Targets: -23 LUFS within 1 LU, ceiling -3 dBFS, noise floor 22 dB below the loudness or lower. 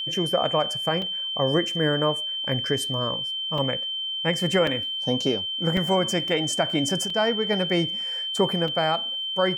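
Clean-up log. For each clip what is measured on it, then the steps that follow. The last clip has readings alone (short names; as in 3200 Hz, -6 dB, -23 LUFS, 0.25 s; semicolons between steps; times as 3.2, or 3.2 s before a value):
dropouts 6; longest dropout 3.1 ms; steady tone 3100 Hz; tone level -27 dBFS; loudness -24.0 LUFS; peak -10.5 dBFS; loudness target -23.0 LUFS
-> interpolate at 1.02/3.58/4.67/5.77/7.1/8.68, 3.1 ms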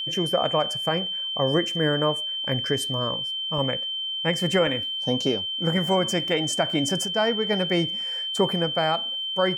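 dropouts 0; steady tone 3100 Hz; tone level -27 dBFS
-> notch 3100 Hz, Q 30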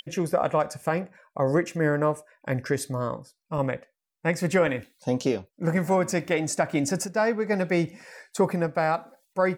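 steady tone none; loudness -26.5 LUFS; peak -12.0 dBFS; loudness target -23.0 LUFS
-> gain +3.5 dB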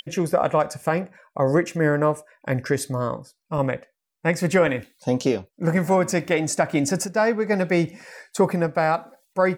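loudness -23.0 LUFS; peak -8.5 dBFS; noise floor -77 dBFS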